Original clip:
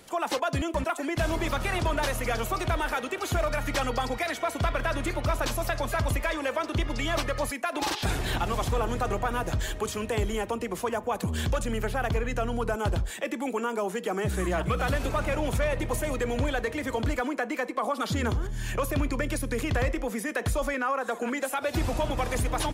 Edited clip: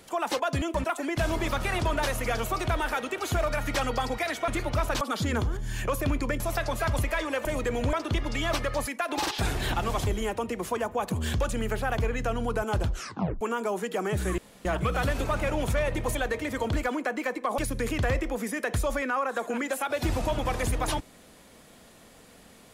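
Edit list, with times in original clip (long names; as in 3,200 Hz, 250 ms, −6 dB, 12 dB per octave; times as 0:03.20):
0:04.48–0:04.99: remove
0:08.71–0:10.19: remove
0:13.01: tape stop 0.52 s
0:14.50: splice in room tone 0.27 s
0:16.00–0:16.48: move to 0:06.57
0:17.91–0:19.30: move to 0:05.52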